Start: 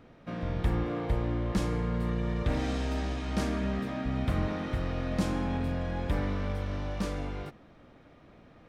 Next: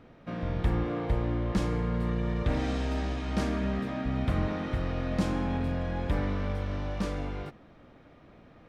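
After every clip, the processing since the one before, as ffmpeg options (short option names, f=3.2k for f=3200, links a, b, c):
-af "highshelf=f=7.2k:g=-7,volume=1dB"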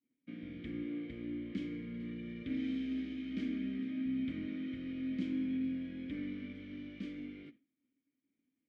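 -filter_complex "[0:a]agate=range=-33dB:threshold=-40dB:ratio=3:detection=peak,asplit=3[a][b][c];[a]bandpass=f=270:t=q:w=8,volume=0dB[d];[b]bandpass=f=2.29k:t=q:w=8,volume=-6dB[e];[c]bandpass=f=3.01k:t=q:w=8,volume=-9dB[f];[d][e][f]amix=inputs=3:normalize=0,volume=1.5dB"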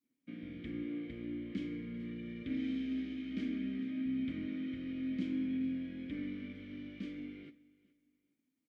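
-af "aecho=1:1:421|842:0.075|0.0225"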